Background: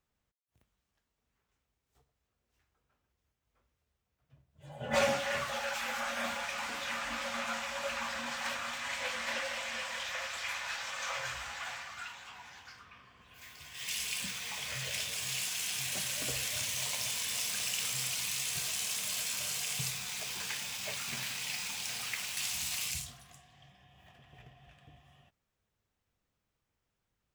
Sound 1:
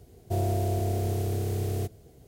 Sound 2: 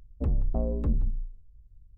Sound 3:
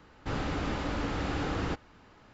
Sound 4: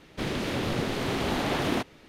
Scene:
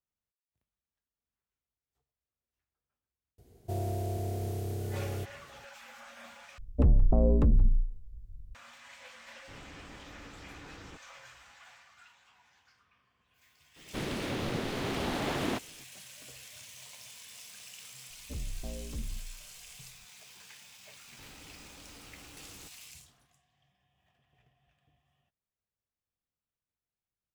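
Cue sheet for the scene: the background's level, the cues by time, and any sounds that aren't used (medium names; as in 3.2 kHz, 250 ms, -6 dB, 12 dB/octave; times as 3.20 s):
background -14.5 dB
3.38 s: add 1 -6.5 dB
6.58 s: replace with 2 -14.5 dB + loudness maximiser +21 dB
9.22 s: add 3 -18 dB
13.76 s: add 4 -5 dB
18.09 s: add 2 -12.5 dB
20.93 s: add 3 -16 dB + compression 2:1, threshold -40 dBFS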